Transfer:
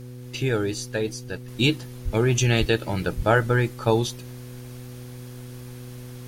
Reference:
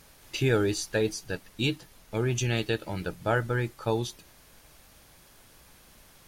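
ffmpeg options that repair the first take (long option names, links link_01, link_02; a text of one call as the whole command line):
ffmpeg -i in.wav -filter_complex "[0:a]bandreject=frequency=123.9:width_type=h:width=4,bandreject=frequency=247.8:width_type=h:width=4,bandreject=frequency=371.7:width_type=h:width=4,bandreject=frequency=495.6:width_type=h:width=4,asplit=3[link_01][link_02][link_03];[link_01]afade=type=out:start_time=2.04:duration=0.02[link_04];[link_02]highpass=frequency=140:width=0.5412,highpass=frequency=140:width=1.3066,afade=type=in:start_time=2.04:duration=0.02,afade=type=out:start_time=2.16:duration=0.02[link_05];[link_03]afade=type=in:start_time=2.16:duration=0.02[link_06];[link_04][link_05][link_06]amix=inputs=3:normalize=0,asplit=3[link_07][link_08][link_09];[link_07]afade=type=out:start_time=2.59:duration=0.02[link_10];[link_08]highpass=frequency=140:width=0.5412,highpass=frequency=140:width=1.3066,afade=type=in:start_time=2.59:duration=0.02,afade=type=out:start_time=2.71:duration=0.02[link_11];[link_09]afade=type=in:start_time=2.71:duration=0.02[link_12];[link_10][link_11][link_12]amix=inputs=3:normalize=0,asplit=3[link_13][link_14][link_15];[link_13]afade=type=out:start_time=3.16:duration=0.02[link_16];[link_14]highpass=frequency=140:width=0.5412,highpass=frequency=140:width=1.3066,afade=type=in:start_time=3.16:duration=0.02,afade=type=out:start_time=3.28:duration=0.02[link_17];[link_15]afade=type=in:start_time=3.28:duration=0.02[link_18];[link_16][link_17][link_18]amix=inputs=3:normalize=0,asetnsamples=nb_out_samples=441:pad=0,asendcmd='1.48 volume volume -7dB',volume=0dB" out.wav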